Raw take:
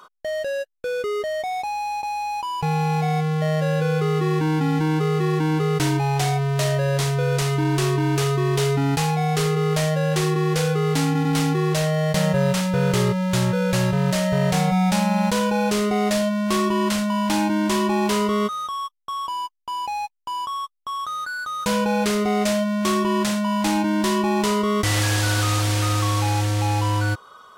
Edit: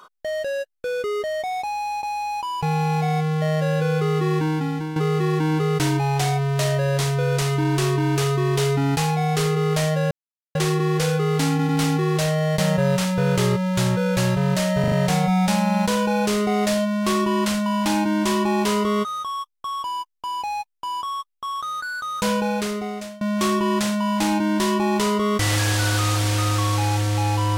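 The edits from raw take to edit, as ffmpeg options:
ffmpeg -i in.wav -filter_complex "[0:a]asplit=7[link_01][link_02][link_03][link_04][link_05][link_06][link_07];[link_01]atrim=end=4.96,asetpts=PTS-STARTPTS,afade=type=out:start_time=4.37:duration=0.59:silence=0.316228[link_08];[link_02]atrim=start=4.96:end=10.11,asetpts=PTS-STARTPTS,afade=type=in:duration=0.004:curve=hsin:silence=0.316228,afade=type=out:start_time=5.146:duration=0.004:curve=hsin,apad=pad_dur=0.44[link_09];[link_03]atrim=start=10.11:end=14.402,asetpts=PTS-STARTPTS,afade=type=in:duration=0.004:curve=hsin[link_10];[link_04]atrim=start=14.358:end=14.402[link_11];[link_05]atrim=start=14.358:end=14.402[link_12];[link_06]atrim=start=14.358:end=22.65,asetpts=PTS-STARTPTS,afade=type=out:start_time=7.362:duration=0.93:silence=0.0707946[link_13];[link_07]atrim=start=22.65,asetpts=PTS-STARTPTS,afade=type=in:duration=0.004:curve=hsin:silence=0.0707946[link_14];[link_08][link_09][link_10]concat=n=3:v=0:a=1[link_15];[link_15][link_11]acrossfade=duration=0.004:curve1=hsin:curve2=hsin[link_16];[link_16][link_12]acrossfade=duration=0.004:curve1=hsin:curve2=hsin[link_17];[link_13][link_14]concat=n=2:v=0:a=1[link_18];[link_17][link_18]acrossfade=duration=0.004:curve1=hsin:curve2=hsin" out.wav

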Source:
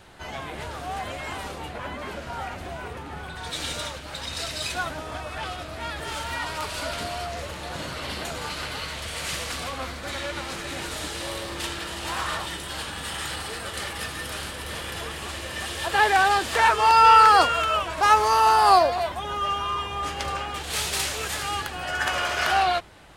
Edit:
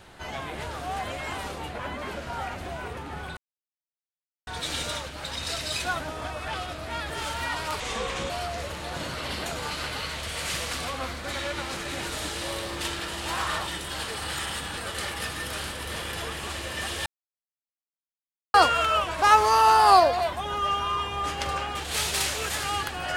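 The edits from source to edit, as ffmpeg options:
ffmpeg -i in.wav -filter_complex "[0:a]asplit=8[link_01][link_02][link_03][link_04][link_05][link_06][link_07][link_08];[link_01]atrim=end=3.37,asetpts=PTS-STARTPTS,afade=type=out:start_time=3.366:duration=0.004:curve=hsin,apad=pad_dur=1.1[link_09];[link_02]atrim=start=3.37:end=6.704,asetpts=PTS-STARTPTS,afade=type=in:duration=0.004:curve=hsin[link_10];[link_03]atrim=start=6.7:end=7.09,asetpts=PTS-STARTPTS,asetrate=34398,aresample=44100[link_11];[link_04]atrim=start=7.086:end=12.872[link_12];[link_05]atrim=start=12.868:end=13.562,asetpts=PTS-STARTPTS,areverse[link_13];[link_06]atrim=start=13.558:end=15.85,asetpts=PTS-STARTPTS,afade=type=out:start_time=2.288:duration=0.004:curve=hsin[link_14];[link_07]atrim=start=15.85:end=17.33,asetpts=PTS-STARTPTS,volume=0[link_15];[link_08]atrim=start=17.33,asetpts=PTS-STARTPTS,afade=type=in:duration=0.004:curve=hsin[link_16];[link_09][link_10]concat=n=2:v=0:a=1[link_17];[link_17][link_11]acrossfade=duration=0.004:curve1=hsin:curve2=hsin[link_18];[link_18][link_12]acrossfade=duration=0.004:curve1=hsin:curve2=hsin[link_19];[link_19][link_13]acrossfade=duration=0.004:curve1=hsin:curve2=hsin[link_20];[link_14][link_15][link_16]concat=n=3:v=0:a=1[link_21];[link_20][link_21]acrossfade=duration=0.004:curve1=hsin:curve2=hsin" out.wav

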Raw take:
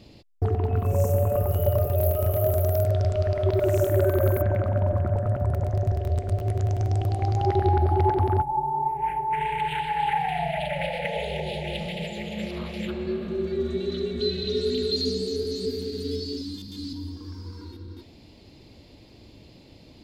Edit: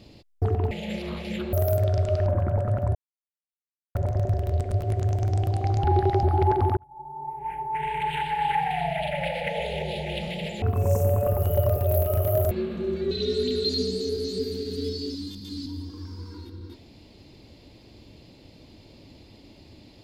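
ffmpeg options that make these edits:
ffmpeg -i in.wav -filter_complex "[0:a]asplit=11[link_01][link_02][link_03][link_04][link_05][link_06][link_07][link_08][link_09][link_10][link_11];[link_01]atrim=end=0.712[link_12];[link_02]atrim=start=12.198:end=13.022[link_13];[link_03]atrim=start=2.598:end=3.332[link_14];[link_04]atrim=start=4.838:end=5.53,asetpts=PTS-STARTPTS,afade=type=out:start_time=0.688:duration=0.004:curve=hsin,apad=pad_dur=1[link_15];[link_05]atrim=start=5.53:end=7.422,asetpts=PTS-STARTPTS,afade=type=in:duration=0.004:curve=hsin[link_16];[link_06]atrim=start=7.418:end=7.812,asetpts=PTS-STARTPTS,areverse[link_17];[link_07]atrim=start=7.808:end=8.35,asetpts=PTS-STARTPTS,afade=type=out:start_time=0.538:duration=0.004:curve=hsin[link_18];[link_08]atrim=start=8.35:end=12.202,asetpts=PTS-STARTPTS,afade=type=in:duration=1.38[link_19];[link_09]atrim=start=0.708:end=2.602[link_20];[link_10]atrim=start=13.018:end=13.622[link_21];[link_11]atrim=start=14.378[link_22];[link_12][link_13]acrossfade=duration=0.004:curve1=hsin:curve2=hsin[link_23];[link_23][link_14]acrossfade=duration=0.004:curve1=hsin:curve2=hsin[link_24];[link_15][link_16]concat=n=2:v=0:a=1[link_25];[link_24][link_25]acrossfade=duration=0.004:curve1=hsin:curve2=hsin[link_26];[link_26][link_17]acrossfade=duration=0.004:curve1=hsin:curve2=hsin[link_27];[link_18][link_19]concat=n=2:v=0:a=1[link_28];[link_27][link_28]acrossfade=duration=0.004:curve1=hsin:curve2=hsin[link_29];[link_29][link_20]acrossfade=duration=0.004:curve1=hsin:curve2=hsin[link_30];[link_30][link_21]acrossfade=duration=0.004:curve1=hsin:curve2=hsin[link_31];[link_31][link_22]acrossfade=duration=0.004:curve1=hsin:curve2=hsin" out.wav

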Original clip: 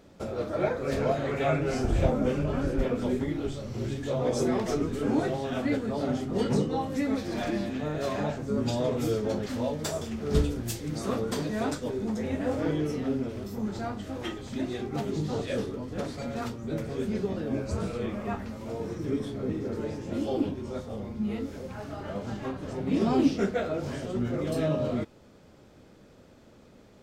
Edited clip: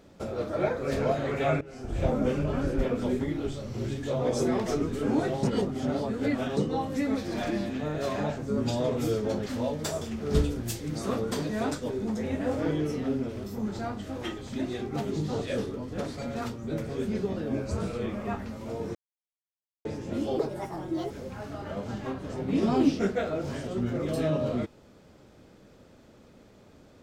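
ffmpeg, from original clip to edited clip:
ffmpeg -i in.wav -filter_complex "[0:a]asplit=8[link_01][link_02][link_03][link_04][link_05][link_06][link_07][link_08];[link_01]atrim=end=1.61,asetpts=PTS-STARTPTS,afade=type=out:start_time=1.606:duration=0.004:curve=hsin:silence=0.125893[link_09];[link_02]atrim=start=1.61:end=5.432,asetpts=PTS-STARTPTS,afade=type=in:duration=0.52:curve=qua:silence=0.125893[link_10];[link_03]atrim=start=5.428:end=6.572,asetpts=PTS-STARTPTS,areverse[link_11];[link_04]atrim=start=6.568:end=18.95,asetpts=PTS-STARTPTS,afade=type=out:start_time=12.378:duration=0.004:curve=hsin[link_12];[link_05]atrim=start=18.95:end=19.85,asetpts=PTS-STARTPTS,volume=0[link_13];[link_06]atrim=start=19.85:end=20.394,asetpts=PTS-STARTPTS,afade=type=in:duration=0.004:curve=hsin[link_14];[link_07]atrim=start=20.39:end=21.49,asetpts=PTS-STARTPTS,asetrate=67914,aresample=44100[link_15];[link_08]atrim=start=21.486[link_16];[link_09][link_10]concat=n=2:v=0:a=1[link_17];[link_17][link_11]acrossfade=duration=0.004:curve1=hsin:curve2=hsin[link_18];[link_12][link_13][link_14]concat=n=3:v=0:a=1[link_19];[link_18][link_19]acrossfade=duration=0.004:curve1=hsin:curve2=hsin[link_20];[link_20][link_15]acrossfade=duration=0.004:curve1=hsin:curve2=hsin[link_21];[link_21][link_16]acrossfade=duration=0.004:curve1=hsin:curve2=hsin" out.wav

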